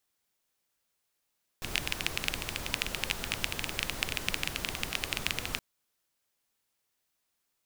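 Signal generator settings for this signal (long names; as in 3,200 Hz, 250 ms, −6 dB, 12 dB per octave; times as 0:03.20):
rain-like ticks over hiss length 3.97 s, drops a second 14, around 2,600 Hz, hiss −2 dB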